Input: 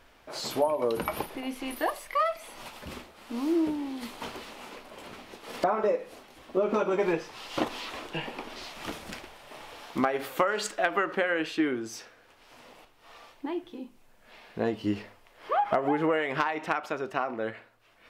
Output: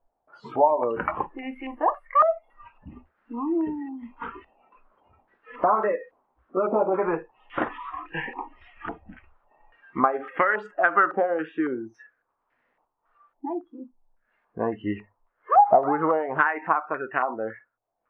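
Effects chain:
noise reduction from a noise print of the clip's start 23 dB
low-pass on a step sequencer 3.6 Hz 770–1,800 Hz

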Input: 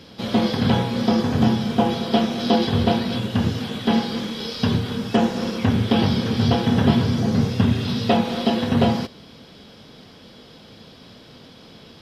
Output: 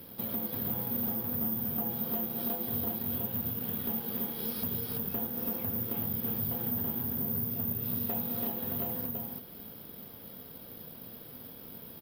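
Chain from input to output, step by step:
high-shelf EQ 2,400 Hz −10 dB
downward compressor 4 to 1, threshold −31 dBFS, peak gain reduction 17 dB
on a send: single-tap delay 333 ms −3.5 dB
on the sum: bad sample-rate conversion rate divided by 3×, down none, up zero stuff
slew-rate limiting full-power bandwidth 1,100 Hz
level −7 dB

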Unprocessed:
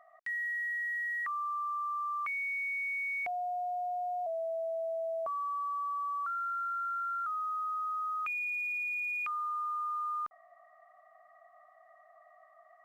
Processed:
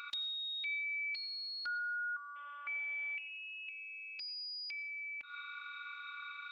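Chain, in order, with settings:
sound drawn into the spectrogram noise, 0:04.64–0:06.22, 280–1,800 Hz −60 dBFS
brickwall limiter −35.5 dBFS, peak gain reduction 5 dB
downward compressor 10 to 1, threshold −53 dBFS, peak gain reduction 15 dB
Bessel low-pass filter 2,300 Hz
change of speed 1.97×
phases set to zero 289 Hz
convolution reverb RT60 0.65 s, pre-delay 80 ms, DRR 14.5 dB
level +17 dB

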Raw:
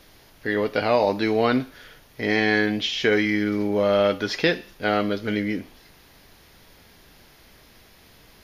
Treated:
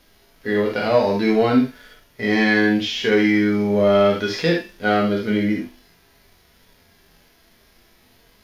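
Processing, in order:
reverb whose tail is shaped and stops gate 90 ms flat, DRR 2 dB
leveller curve on the samples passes 1
harmonic and percussive parts rebalanced percussive −16 dB

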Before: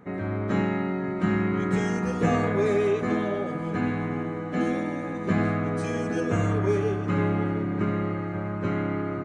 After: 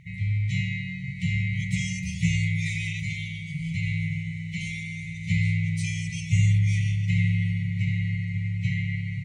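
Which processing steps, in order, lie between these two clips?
linear-phase brick-wall band-stop 170–1,900 Hz
level +7.5 dB

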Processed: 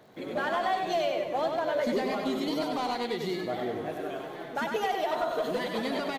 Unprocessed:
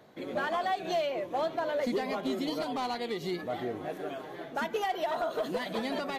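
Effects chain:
surface crackle 86 per second −52 dBFS
repeating echo 97 ms, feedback 45%, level −5 dB
level +1 dB

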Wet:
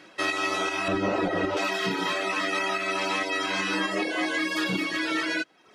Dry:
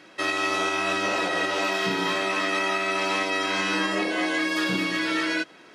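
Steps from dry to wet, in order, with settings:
reverb reduction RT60 0.76 s
0:00.88–0:01.57: spectral tilt −4 dB per octave

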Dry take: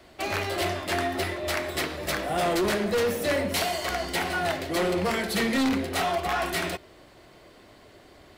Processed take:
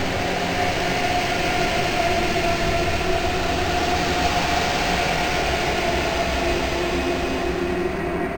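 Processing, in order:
lower of the sound and its delayed copy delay 0.4 ms
sine wavefolder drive 10 dB, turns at −17.5 dBFS
multiband delay without the direct sound highs, lows 270 ms, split 1,800 Hz
extreme stretch with random phases 14×, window 0.25 s, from 0:06.25
linearly interpolated sample-rate reduction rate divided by 4×

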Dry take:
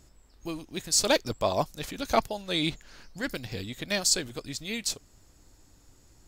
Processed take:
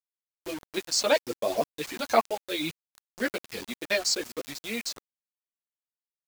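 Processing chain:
high-pass filter 350 Hz 12 dB per octave
in parallel at +2.5 dB: brickwall limiter −18 dBFS, peak gain reduction 8.5 dB
on the sum: multi-voice chorus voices 6, 1.3 Hz, delay 11 ms, depth 3 ms
rotating-speaker cabinet horn 0.85 Hz, later 5.5 Hz, at 0:02.68
dynamic equaliser 3,300 Hz, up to −5 dB, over −49 dBFS, Q 5.4
reverb reduction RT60 0.82 s
high-frequency loss of the air 100 metres
on a send: delay with a high-pass on its return 183 ms, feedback 55%, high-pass 5,100 Hz, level −18.5 dB
on the sum: bit reduction 7 bits
level +3 dB

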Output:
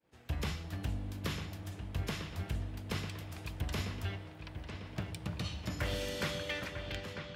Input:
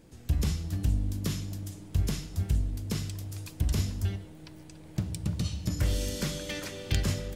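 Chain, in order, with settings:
fade-out on the ending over 1.03 s
three-way crossover with the lows and the highs turned down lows −12 dB, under 520 Hz, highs −21 dB, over 3,400 Hz
downward expander −55 dBFS
high-pass filter 56 Hz
high-shelf EQ 8,100 Hz +11 dB
on a send: delay with a low-pass on its return 948 ms, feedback 51%, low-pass 3,800 Hz, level −8 dB
on the sum: level +3.5 dB

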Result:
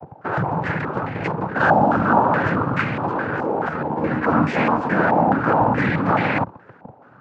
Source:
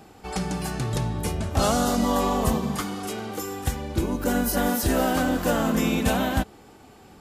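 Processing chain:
frequency shifter −40 Hz
in parallel at −3.5 dB: comparator with hysteresis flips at −39.5 dBFS
on the sum: cochlear-implant simulation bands 8
0:03.69–0:04.80: double-tracking delay 13 ms −5.5 dB
low-pass on a step sequencer 4.7 Hz 810–2,100 Hz

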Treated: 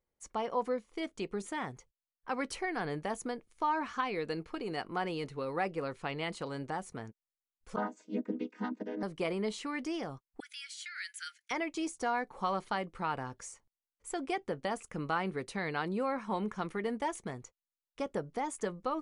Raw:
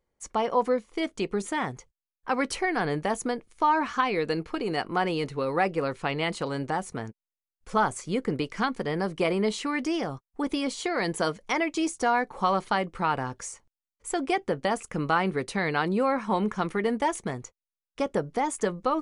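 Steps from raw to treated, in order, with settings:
0:07.76–0:09.03: channel vocoder with a chord as carrier minor triad, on G#3
0:10.40–0:11.51: Butterworth high-pass 1,400 Hz 96 dB per octave
level −8.5 dB

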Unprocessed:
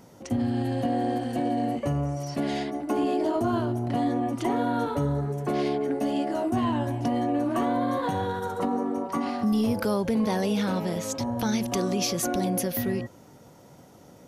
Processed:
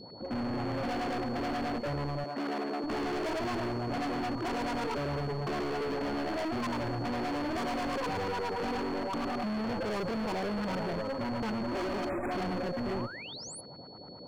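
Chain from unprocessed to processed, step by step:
auto-filter low-pass saw up 9.3 Hz 350–1,600 Hz
tube saturation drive 26 dB, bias 0.6
0:11.67–0:12.26: comb filter 3.2 ms, depth 91%
hard clipping −34.5 dBFS, distortion −8 dB
on a send: delay with a high-pass on its return 70 ms, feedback 82%, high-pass 5,300 Hz, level −15 dB
on the sum: steady tone 4,400 Hz −53 dBFS
0:02.24–0:02.84: high-pass filter 200 Hz 24 dB per octave
0:12.09–0:12.31: time-frequency box erased 2,600–7,000 Hz
notch filter 3,800 Hz, Q 16
0:12.80–0:13.61: sound drawn into the spectrogram rise 440–11,000 Hz −47 dBFS
level +2.5 dB

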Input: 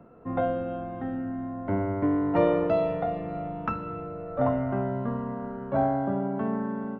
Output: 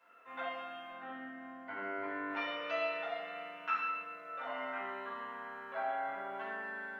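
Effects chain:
brickwall limiter −20 dBFS, peak gain reduction 10.5 dB
Chebyshev high-pass filter 2,400 Hz, order 2
0:00.90–0:02.30: spectral tilt −2.5 dB per octave
rectangular room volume 330 cubic metres, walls mixed, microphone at 5 metres
level −1.5 dB

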